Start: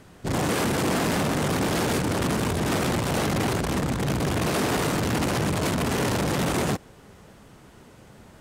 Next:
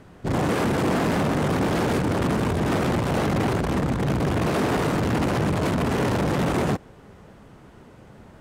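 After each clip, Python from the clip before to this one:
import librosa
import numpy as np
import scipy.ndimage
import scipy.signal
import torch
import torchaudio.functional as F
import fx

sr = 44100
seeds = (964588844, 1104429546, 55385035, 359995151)

y = fx.high_shelf(x, sr, hz=3200.0, db=-11.0)
y = y * librosa.db_to_amplitude(2.5)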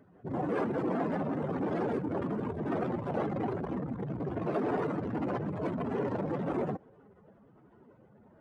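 y = fx.spec_expand(x, sr, power=2.0)
y = fx.highpass(y, sr, hz=750.0, slope=6)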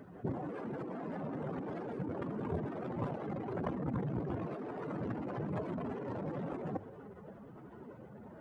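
y = fx.hum_notches(x, sr, base_hz=50, count=2)
y = fx.over_compress(y, sr, threshold_db=-40.0, ratio=-1.0)
y = y * librosa.db_to_amplitude(1.0)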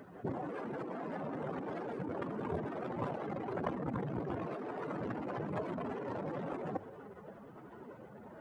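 y = fx.low_shelf(x, sr, hz=300.0, db=-8.5)
y = y * librosa.db_to_amplitude(3.5)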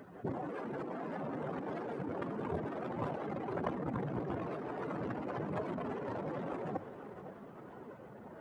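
y = fx.echo_feedback(x, sr, ms=505, feedback_pct=60, wet_db=-14)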